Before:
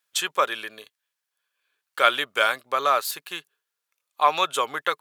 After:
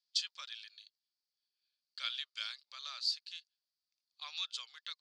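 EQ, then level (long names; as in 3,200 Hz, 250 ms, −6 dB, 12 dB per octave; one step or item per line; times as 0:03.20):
resonant band-pass 4,700 Hz, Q 7.4
high-frequency loss of the air 150 metres
first difference
+13.5 dB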